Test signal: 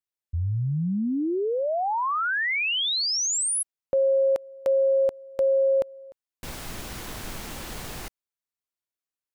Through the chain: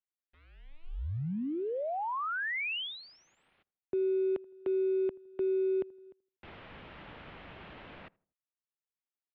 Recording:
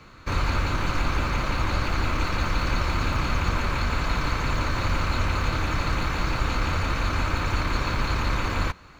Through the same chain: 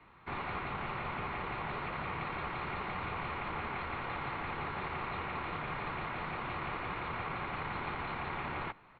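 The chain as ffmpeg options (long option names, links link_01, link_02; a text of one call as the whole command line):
ffmpeg -i in.wav -filter_complex "[0:a]acrusher=bits=7:mode=log:mix=0:aa=0.000001,highpass=frequency=200:width_type=q:width=0.5412,highpass=frequency=200:width_type=q:width=1.307,lowpass=frequency=3300:width_type=q:width=0.5176,lowpass=frequency=3300:width_type=q:width=0.7071,lowpass=frequency=3300:width_type=q:width=1.932,afreqshift=-160,asplit=2[link_01][link_02];[link_02]adelay=81,lowpass=frequency=1100:poles=1,volume=-23.5dB,asplit=2[link_03][link_04];[link_04]adelay=81,lowpass=frequency=1100:poles=1,volume=0.39,asplit=2[link_05][link_06];[link_06]adelay=81,lowpass=frequency=1100:poles=1,volume=0.39[link_07];[link_01][link_03][link_05][link_07]amix=inputs=4:normalize=0,volume=-8.5dB" out.wav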